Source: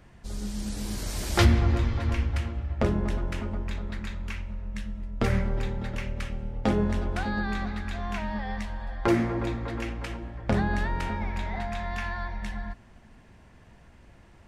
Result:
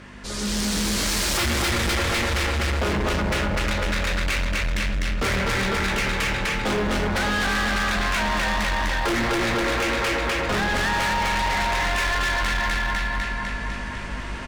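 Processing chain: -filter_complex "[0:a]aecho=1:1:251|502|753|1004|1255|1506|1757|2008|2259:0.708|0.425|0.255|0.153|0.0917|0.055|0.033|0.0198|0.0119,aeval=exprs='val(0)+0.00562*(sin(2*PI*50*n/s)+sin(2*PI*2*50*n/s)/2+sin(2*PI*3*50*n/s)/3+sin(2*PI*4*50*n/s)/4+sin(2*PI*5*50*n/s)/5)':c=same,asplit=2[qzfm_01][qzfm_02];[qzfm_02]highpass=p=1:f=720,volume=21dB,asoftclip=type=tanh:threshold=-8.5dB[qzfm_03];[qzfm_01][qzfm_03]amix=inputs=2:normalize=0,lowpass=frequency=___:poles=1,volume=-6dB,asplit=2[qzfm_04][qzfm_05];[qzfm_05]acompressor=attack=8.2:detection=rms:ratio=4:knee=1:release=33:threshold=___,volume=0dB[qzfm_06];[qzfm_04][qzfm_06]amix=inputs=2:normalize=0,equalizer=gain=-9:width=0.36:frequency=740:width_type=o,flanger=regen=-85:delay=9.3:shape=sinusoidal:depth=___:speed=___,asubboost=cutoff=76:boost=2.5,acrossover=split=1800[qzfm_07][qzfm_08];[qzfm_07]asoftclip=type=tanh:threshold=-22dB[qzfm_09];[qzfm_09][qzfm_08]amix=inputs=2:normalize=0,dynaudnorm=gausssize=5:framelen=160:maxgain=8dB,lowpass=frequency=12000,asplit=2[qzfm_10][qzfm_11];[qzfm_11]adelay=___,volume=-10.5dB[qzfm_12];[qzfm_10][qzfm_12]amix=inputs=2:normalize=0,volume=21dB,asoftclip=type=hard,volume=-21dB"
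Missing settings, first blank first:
5300, -38dB, 5.2, 1.8, 16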